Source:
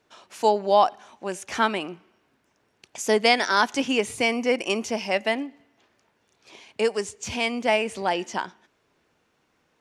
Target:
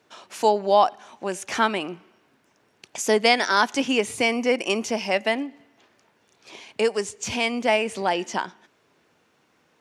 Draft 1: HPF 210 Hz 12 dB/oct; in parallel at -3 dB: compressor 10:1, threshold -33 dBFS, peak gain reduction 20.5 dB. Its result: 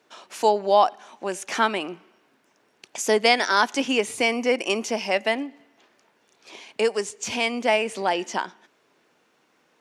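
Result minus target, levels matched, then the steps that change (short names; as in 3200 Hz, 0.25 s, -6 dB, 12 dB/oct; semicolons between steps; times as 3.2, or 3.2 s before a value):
125 Hz band -3.5 dB
change: HPF 100 Hz 12 dB/oct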